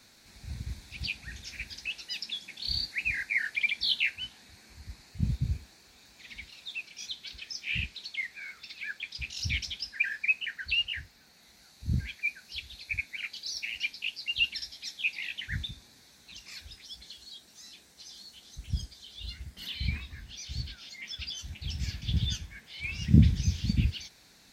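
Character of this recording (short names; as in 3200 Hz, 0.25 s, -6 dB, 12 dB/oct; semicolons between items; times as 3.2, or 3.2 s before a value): noise floor -59 dBFS; spectral tilt -4.0 dB/oct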